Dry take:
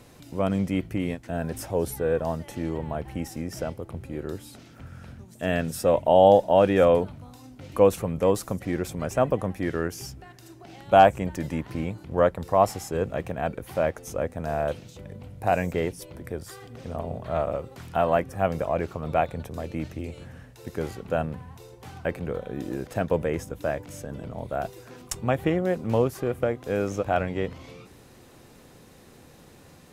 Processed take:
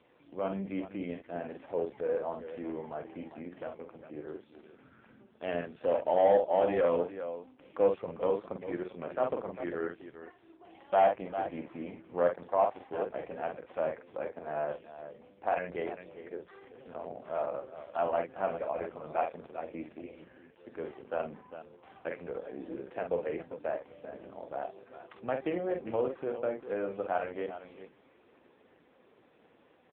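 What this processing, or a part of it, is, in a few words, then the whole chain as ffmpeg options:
telephone: -filter_complex "[0:a]asettb=1/sr,asplit=3[s0][s1][s2];[s0]atrim=end=20.114[s3];[s1]atrim=start=20.11:end=21.92,asetpts=PTS-STARTPTS,afade=t=in:d=0.004:c=qsin,afade=t=out:st=1.806:d=0.004:c=qsin,highpass=69[s4];[s2]atrim=start=21.916[s5];[s3][s4]acrossfade=d=0.004:c1=hsin:c2=qsin[s6];[s6][s5]acrossfade=d=0.004:c1=qsin:c2=hsin,highpass=290,lowpass=3400,aecho=1:1:46|399:0.531|0.251,asoftclip=type=tanh:threshold=0.376,volume=0.501" -ar 8000 -c:a libopencore_amrnb -b:a 5150

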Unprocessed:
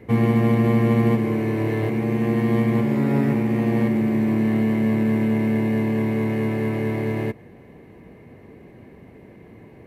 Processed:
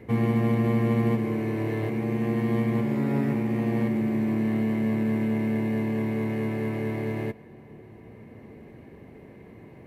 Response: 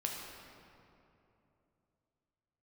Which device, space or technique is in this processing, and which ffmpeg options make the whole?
ducked reverb: -filter_complex "[0:a]asplit=3[s0][s1][s2];[1:a]atrim=start_sample=2205[s3];[s1][s3]afir=irnorm=-1:irlink=0[s4];[s2]apad=whole_len=435206[s5];[s4][s5]sidechaincompress=threshold=0.00562:ratio=3:attack=16:release=861,volume=0.944[s6];[s0][s6]amix=inputs=2:normalize=0,volume=0.501"

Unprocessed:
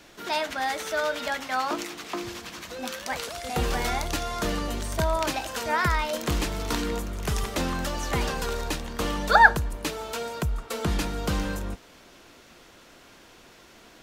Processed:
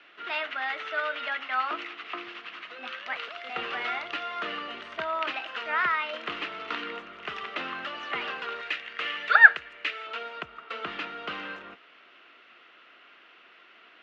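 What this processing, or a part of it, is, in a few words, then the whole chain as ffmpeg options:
phone earpiece: -filter_complex "[0:a]highpass=450,equalizer=f=530:t=q:w=4:g=-5,equalizer=f=890:t=q:w=4:g=-6,equalizer=f=1300:t=q:w=4:g=8,equalizer=f=2000:t=q:w=4:g=5,equalizer=f=2800:t=q:w=4:g=8,lowpass=f=3400:w=0.5412,lowpass=f=3400:w=1.3066,asettb=1/sr,asplit=3[s0][s1][s2];[s0]atrim=end=8.614[s3];[s1]atrim=start=8.61:end=10.07,asetpts=PTS-STARTPTS,afade=t=in:d=0.004:c=qsin,afade=t=out:st=1.456:d=0.004:c=qsin,equalizer=f=125:t=o:w=1:g=-5,equalizer=f=250:t=o:w=1:g=-9,equalizer=f=1000:t=o:w=1:g=-8,equalizer=f=2000:t=o:w=1:g=8,equalizer=f=8000:t=o:w=1:g=6[s4];[s2]atrim=start=10.066[s5];[s3][s4]acrossfade=d=0.004:c1=hsin:c2=qsin[s6];[s6][s5]acrossfade=d=0.004:c1=qsin:c2=hsin,volume=0.631"

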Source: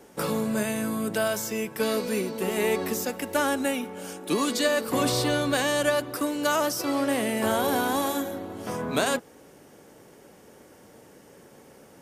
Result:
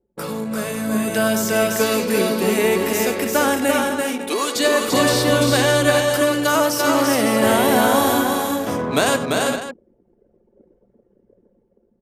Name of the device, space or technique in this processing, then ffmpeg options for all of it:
voice memo with heavy noise removal: -filter_complex "[0:a]asettb=1/sr,asplit=3[s0][s1][s2];[s0]atrim=end=3.944[s3];[s1]atrim=start=3.94:end=4.56,asetpts=PTS-STARTPTS,afade=t=in:d=0.004:c=qsin,afade=t=out:st=0.616:d=0.004:c=qsin,highpass=f=380:w=0.5412,highpass=f=380:w=1.3066[s4];[s2]atrim=start=4.556[s5];[s3][s4]acrossfade=d=0.004:c1=hsin:c2=qsin[s6];[s6][s5]acrossfade=d=0.004:c1=qsin:c2=hsin,aecho=1:1:95|342|398|470|552:0.251|0.668|0.398|0.119|0.266,anlmdn=1.58,dynaudnorm=f=130:g=17:m=2.66"

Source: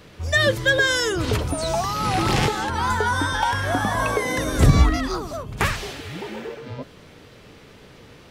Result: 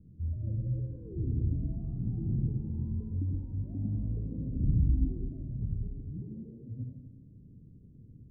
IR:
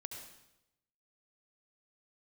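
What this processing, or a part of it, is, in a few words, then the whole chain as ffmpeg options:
club heard from the street: -filter_complex "[0:a]alimiter=limit=0.188:level=0:latency=1:release=85,lowpass=f=240:w=0.5412,lowpass=f=240:w=1.3066[s0];[1:a]atrim=start_sample=2205[s1];[s0][s1]afir=irnorm=-1:irlink=0"

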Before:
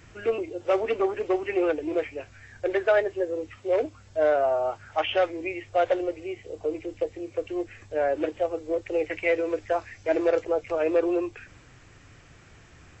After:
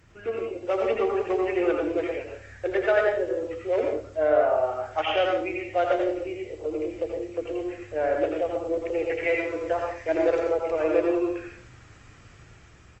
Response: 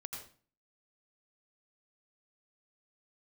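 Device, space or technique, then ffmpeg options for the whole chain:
speakerphone in a meeting room: -filter_complex "[0:a]asettb=1/sr,asplit=3[s0][s1][s2];[s0]atrim=end=3.814[s3];[s1]atrim=start=3.81:end=4.83,asetpts=PTS-STARTPTS,afade=t=in:d=0.004:c=qsin,afade=t=out:st=1.016:d=0.004:c=qsin,acrossover=split=2800[s4][s5];[s5]acompressor=threshold=0.00126:ratio=4:attack=1:release=60[s6];[s4][s6]amix=inputs=2:normalize=0[s7];[s2]atrim=start=4.826[s8];[s3][s7]acrossfade=d=0.004:c1=hsin:c2=qsin[s9];[s9][s8]acrossfade=d=0.004:c1=qsin:c2=hsin[s10];[1:a]atrim=start_sample=2205[s11];[s10][s11]afir=irnorm=-1:irlink=0,asplit=2[s12][s13];[s13]adelay=300,highpass=300,lowpass=3400,asoftclip=type=hard:threshold=0.0794,volume=0.0501[s14];[s12][s14]amix=inputs=2:normalize=0,dynaudnorm=f=180:g=9:m=1.5" -ar 48000 -c:a libopus -b:a 32k

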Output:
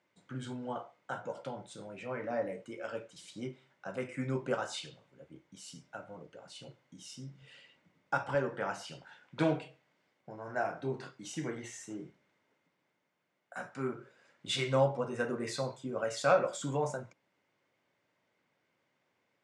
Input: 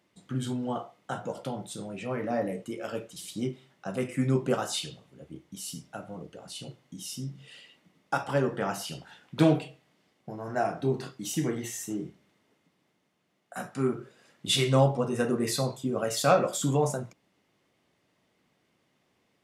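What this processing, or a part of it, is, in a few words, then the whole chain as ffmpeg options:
car door speaker: -filter_complex "[0:a]highpass=97,equalizer=f=100:t=q:w=4:g=3,equalizer=f=200:t=q:w=4:g=-3,equalizer=f=550:t=q:w=4:g=6,equalizer=f=940:t=q:w=4:g=6,equalizer=f=1500:t=q:w=4:g=8,equalizer=f=2200:t=q:w=4:g=6,lowpass=f=8300:w=0.5412,lowpass=f=8300:w=1.3066,asettb=1/sr,asplit=3[s0][s1][s2];[s0]atrim=end=7.424[s3];[s1]atrim=start=7.42:end=8.35,asetpts=PTS-STARTPTS,afade=t=in:d=0.004:c=qsin,afade=t=out:st=0.926:d=0.004:c=qsin,lowshelf=f=150:g=11.5[s4];[s2]atrim=start=8.346[s5];[s3][s4]acrossfade=d=0.004:c1=hsin:c2=qsin[s6];[s6][s5]acrossfade=d=0.004:c1=qsin:c2=hsin,volume=0.355"

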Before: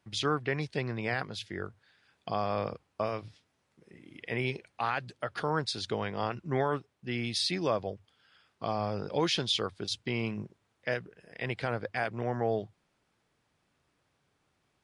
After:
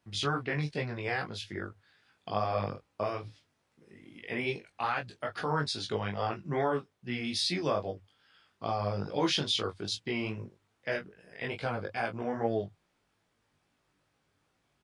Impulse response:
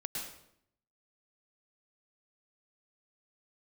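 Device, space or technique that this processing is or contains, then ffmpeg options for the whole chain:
double-tracked vocal: -filter_complex "[0:a]asplit=2[s0][s1];[s1]adelay=21,volume=0.447[s2];[s0][s2]amix=inputs=2:normalize=0,flanger=delay=17:depth=3.4:speed=2.4,asettb=1/sr,asplit=3[s3][s4][s5];[s3]atrim=end=11.484[s6];[s4]atrim=start=11.48:end=12.29,asetpts=PTS-STARTPTS,afade=t=in:d=0.004:c=qsin,afade=t=out:st=0.806:d=0.004:c=qsin,bandreject=f=1900:w=6.2[s7];[s5]atrim=start=12.286[s8];[s6][s7]acrossfade=d=0.004:c1=hsin:c2=qsin[s9];[s9][s8]acrossfade=d=0.004:c1=qsin:c2=hsin,volume=1.26"

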